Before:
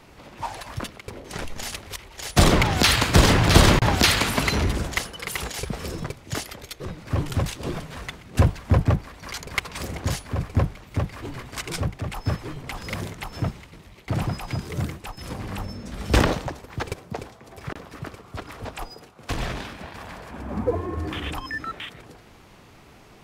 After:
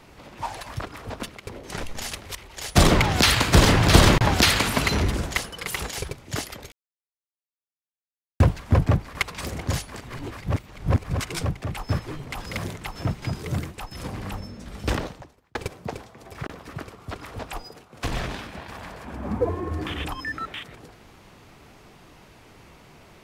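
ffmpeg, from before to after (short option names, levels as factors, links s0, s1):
-filter_complex "[0:a]asplit=11[s0][s1][s2][s3][s4][s5][s6][s7][s8][s9][s10];[s0]atrim=end=0.812[s11];[s1]atrim=start=18.358:end=18.752[s12];[s2]atrim=start=0.808:end=5.702[s13];[s3]atrim=start=6.078:end=6.71,asetpts=PTS-STARTPTS,afade=t=out:st=0.628:d=0.004:c=hsin[s14];[s4]atrim=start=6.71:end=8.39,asetpts=PTS-STARTPTS,volume=0[s15];[s5]atrim=start=8.39:end=9.142,asetpts=PTS-STARTPTS,afade=t=in:d=0.004:c=hsin[s16];[s6]atrim=start=9.518:end=10.332[s17];[s7]atrim=start=10.328:end=11.572,asetpts=PTS-STARTPTS,areverse[s18];[s8]atrim=start=11.568:end=13.592[s19];[s9]atrim=start=14.478:end=16.81,asetpts=PTS-STARTPTS,afade=t=out:st=0.882:d=1.45[s20];[s10]atrim=start=16.81,asetpts=PTS-STARTPTS,afade=t=in:d=0.004:c=hsin[s21];[s11][s12]acrossfade=d=0.004:c1=hsin:c2=hsin[s22];[s22][s13]acrossfade=d=0.004:c1=hsin:c2=hsin[s23];[s14][s15][s16]concat=n=3:v=0:a=1[s24];[s23][s24]acrossfade=d=0.004:c1=hsin:c2=hsin[s25];[s25][s17]acrossfade=d=0.004:c1=hsin:c2=hsin[s26];[s26][s18]acrossfade=d=0.004:c1=hsin:c2=hsin[s27];[s27][s19]acrossfade=d=0.004:c1=hsin:c2=hsin[s28];[s20][s21]concat=n=2:v=0:a=1[s29];[s28][s29]acrossfade=d=0.004:c1=hsin:c2=hsin"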